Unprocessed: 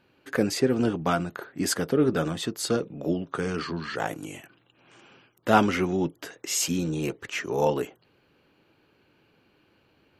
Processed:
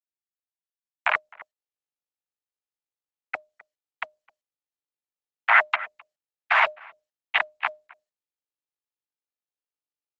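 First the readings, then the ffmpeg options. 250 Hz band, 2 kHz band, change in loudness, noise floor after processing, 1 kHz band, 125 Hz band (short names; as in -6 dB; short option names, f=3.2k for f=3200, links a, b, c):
under -40 dB, +9.0 dB, +3.5 dB, under -85 dBFS, +2.0 dB, under -40 dB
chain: -filter_complex "[0:a]afwtdn=0.0355,aderivative,dynaudnorm=f=180:g=9:m=11dB,aresample=16000,acrusher=bits=3:mix=0:aa=0.000001,aresample=44100,aeval=exprs='0.447*sin(PI/2*2.51*val(0)/0.447)':c=same,afreqshift=490,asplit=2[a][b];[b]adelay=260,highpass=300,lowpass=3.4k,asoftclip=type=hard:threshold=-9dB,volume=-28dB[c];[a][c]amix=inputs=2:normalize=0,highpass=f=380:t=q:w=0.5412,highpass=f=380:t=q:w=1.307,lowpass=f=2.3k:t=q:w=0.5176,lowpass=f=2.3k:t=q:w=0.7071,lowpass=f=2.3k:t=q:w=1.932,afreqshift=120,alimiter=level_in=16dB:limit=-1dB:release=50:level=0:latency=1,volume=-5dB" -ar 48000 -c:a libopus -b:a 10k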